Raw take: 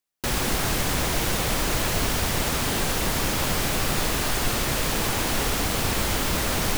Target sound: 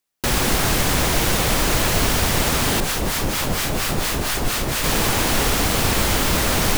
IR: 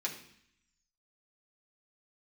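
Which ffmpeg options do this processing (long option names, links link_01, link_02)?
-filter_complex "[0:a]asettb=1/sr,asplit=3[link_01][link_02][link_03];[link_01]atrim=end=2.804[link_04];[link_02]atrim=start=2.8:end=4.84,asetpts=PTS-STARTPTS,afade=type=in:duration=0.004:curve=qsin,afade=type=out:start_time=2.036:duration=0.004:curve=qsin,acrossover=split=920[link_05][link_06];[link_05]aeval=exprs='val(0)*(1-0.7/2+0.7/2*cos(2*PI*4.3*n/s))':channel_layout=same[link_07];[link_06]aeval=exprs='val(0)*(1-0.7/2-0.7/2*cos(2*PI*4.3*n/s))':channel_layout=same[link_08];[link_07][link_08]amix=inputs=2:normalize=0[link_09];[link_03]atrim=start=4.836[link_10];[link_04][link_09]acrossfade=duration=0.004:curve1=hsin:curve2=qsin[link_11];[link_11][link_10]acrossfade=duration=0.004:curve1=qsin:curve2=hsin,volume=5.5dB"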